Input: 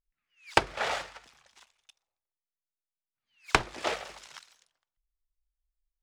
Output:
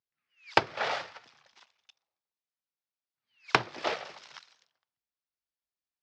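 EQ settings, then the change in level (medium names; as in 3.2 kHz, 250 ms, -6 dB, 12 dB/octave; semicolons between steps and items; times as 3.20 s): Chebyshev band-pass 110–5300 Hz, order 3; 0.0 dB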